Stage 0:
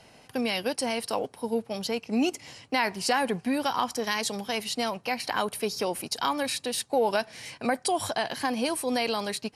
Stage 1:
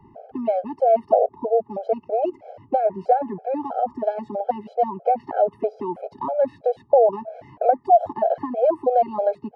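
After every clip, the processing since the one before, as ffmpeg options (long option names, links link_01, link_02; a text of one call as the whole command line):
ffmpeg -i in.wav -filter_complex "[0:a]acrossover=split=190|450[link_01][link_02][link_03];[link_01]acompressor=threshold=-53dB:ratio=4[link_04];[link_02]acompressor=threshold=-40dB:ratio=4[link_05];[link_03]acompressor=threshold=-29dB:ratio=4[link_06];[link_04][link_05][link_06]amix=inputs=3:normalize=0,lowpass=frequency=660:width_type=q:width=4.9,afftfilt=real='re*gt(sin(2*PI*3.1*pts/sr)*(1-2*mod(floor(b*sr/1024/430),2)),0)':imag='im*gt(sin(2*PI*3.1*pts/sr)*(1-2*mod(floor(b*sr/1024/430),2)),0)':win_size=1024:overlap=0.75,volume=8dB" out.wav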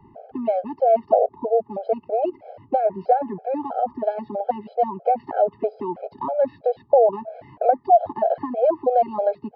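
ffmpeg -i in.wav -af "aresample=11025,aresample=44100" out.wav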